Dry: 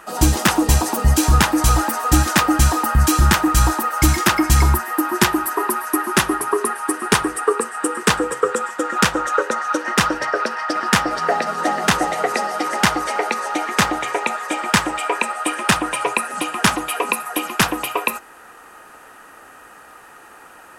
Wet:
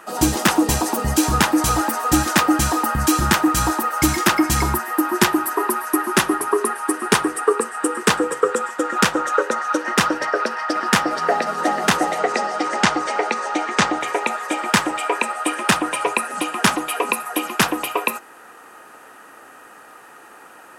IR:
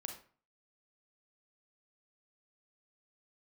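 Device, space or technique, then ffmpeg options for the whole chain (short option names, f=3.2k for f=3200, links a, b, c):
filter by subtraction: -filter_complex "[0:a]asplit=2[a][b];[b]lowpass=270,volume=-1[c];[a][c]amix=inputs=2:normalize=0,asettb=1/sr,asplit=3[d][e][f];[d]atrim=end=12.184[g];[e]atrim=start=12.18:end=14.01,asetpts=PTS-STARTPTS,afade=t=in:d=0.004:c=qsin,afade=t=out:st=1.826:d=0.004:c=qsin,lowpass=f=8.2k:w=0.5412,lowpass=f=8.2k:w=1.3066[h];[f]atrim=start=14.006[i];[g][h]acrossfade=d=0.004:c1=hsin:c2=qsin[j];[j][i]acrossfade=d=0.004:c1=qsin:c2=hsin,volume=-1dB"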